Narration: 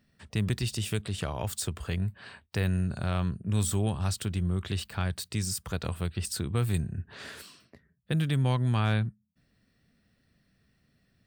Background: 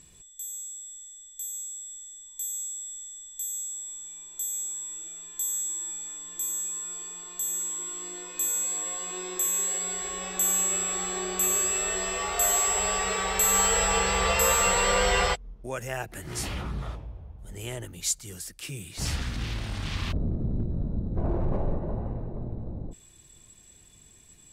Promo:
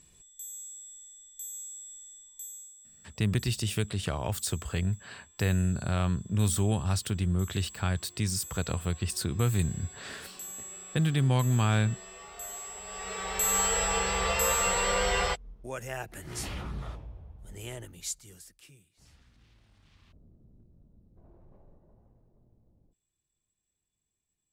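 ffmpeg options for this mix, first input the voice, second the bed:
-filter_complex "[0:a]adelay=2850,volume=1dB[a];[1:a]volume=8dB,afade=t=out:st=2.13:d=0.61:silence=0.251189,afade=t=in:st=12.85:d=0.64:silence=0.223872,afade=t=out:st=17.59:d=1.31:silence=0.0501187[b];[a][b]amix=inputs=2:normalize=0"

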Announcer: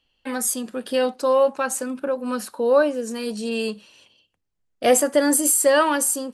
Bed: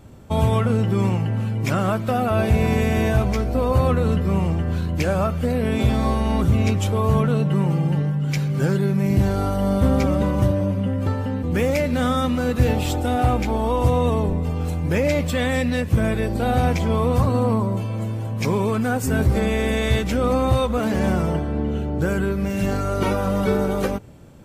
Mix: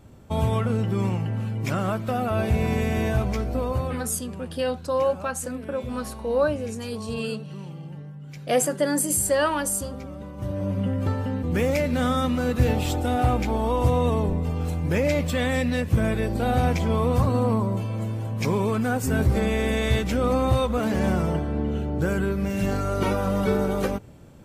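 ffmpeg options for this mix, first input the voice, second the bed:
-filter_complex "[0:a]adelay=3650,volume=-5dB[a];[1:a]volume=10.5dB,afade=t=out:st=3.53:d=0.57:silence=0.223872,afade=t=in:st=10.37:d=0.43:silence=0.177828[b];[a][b]amix=inputs=2:normalize=0"

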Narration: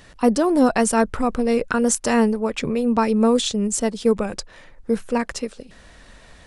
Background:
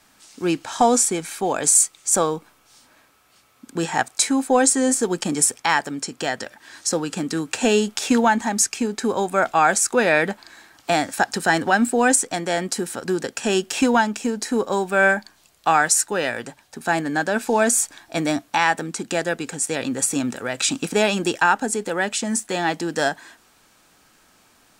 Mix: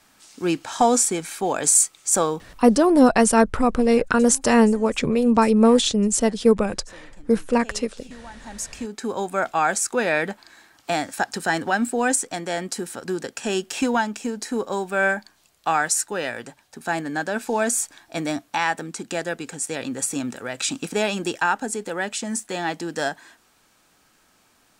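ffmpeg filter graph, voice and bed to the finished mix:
-filter_complex "[0:a]adelay=2400,volume=2dB[a];[1:a]volume=20dB,afade=t=out:st=2.6:d=0.27:silence=0.0630957,afade=t=in:st=8.33:d=0.9:silence=0.0891251[b];[a][b]amix=inputs=2:normalize=0"

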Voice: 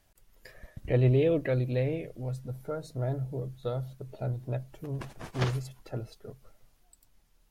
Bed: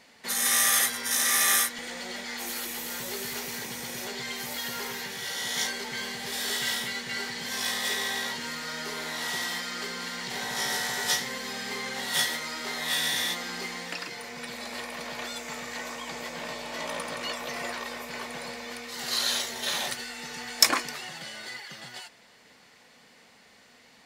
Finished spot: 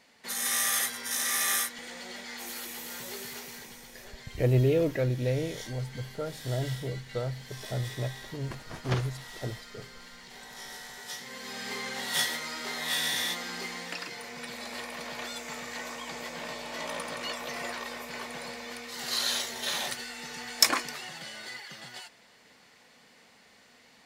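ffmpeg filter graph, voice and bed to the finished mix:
-filter_complex "[0:a]adelay=3500,volume=0dB[a];[1:a]volume=7dB,afade=t=out:st=3.15:d=0.77:silence=0.354813,afade=t=in:st=11.13:d=0.57:silence=0.251189[b];[a][b]amix=inputs=2:normalize=0"

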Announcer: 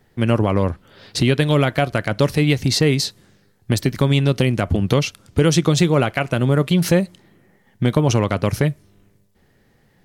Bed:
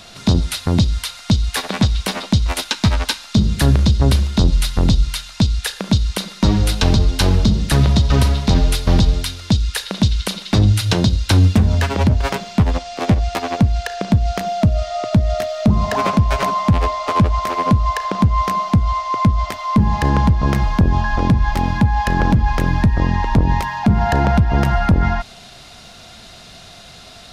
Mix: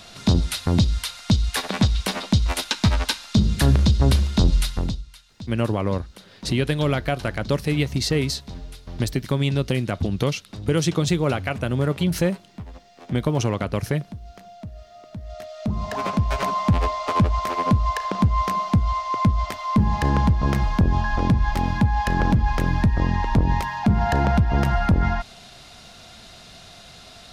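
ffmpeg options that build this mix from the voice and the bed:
-filter_complex "[0:a]adelay=5300,volume=-5.5dB[a];[1:a]volume=14.5dB,afade=t=out:st=4.57:d=0.46:silence=0.112202,afade=t=in:st=15.16:d=1.46:silence=0.125893[b];[a][b]amix=inputs=2:normalize=0"

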